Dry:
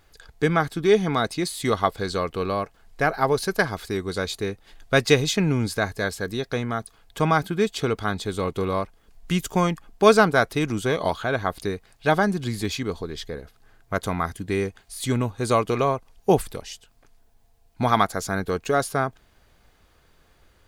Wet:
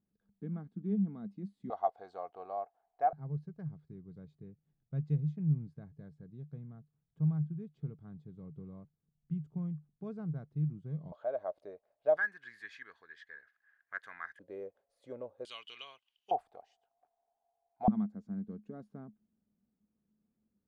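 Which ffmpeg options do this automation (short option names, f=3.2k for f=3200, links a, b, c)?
-af "asetnsamples=n=441:p=0,asendcmd='1.7 bandpass f 730;3.13 bandpass f 150;11.12 bandpass f 600;12.17 bandpass f 1700;14.39 bandpass f 550;15.45 bandpass f 3000;16.31 bandpass f 730;17.88 bandpass f 210',bandpass=f=200:t=q:w=13:csg=0"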